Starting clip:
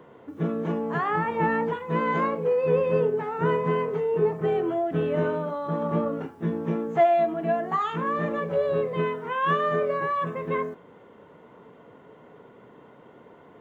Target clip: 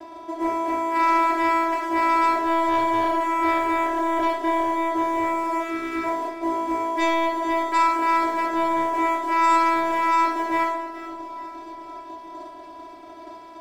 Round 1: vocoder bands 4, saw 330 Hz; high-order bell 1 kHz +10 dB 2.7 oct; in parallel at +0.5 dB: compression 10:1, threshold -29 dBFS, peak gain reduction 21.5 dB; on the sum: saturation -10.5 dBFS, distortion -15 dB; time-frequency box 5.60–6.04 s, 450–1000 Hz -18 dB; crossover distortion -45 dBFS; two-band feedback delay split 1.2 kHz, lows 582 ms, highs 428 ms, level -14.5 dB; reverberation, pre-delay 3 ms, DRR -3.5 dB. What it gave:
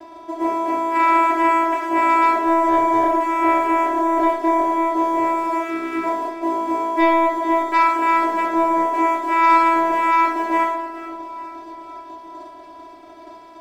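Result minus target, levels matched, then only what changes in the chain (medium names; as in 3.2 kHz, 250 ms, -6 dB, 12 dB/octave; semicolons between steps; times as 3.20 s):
compression: peak gain reduction -6.5 dB; saturation: distortion -6 dB
change: compression 10:1, threshold -36 dBFS, peak gain reduction 27.5 dB; change: saturation -18 dBFS, distortion -9 dB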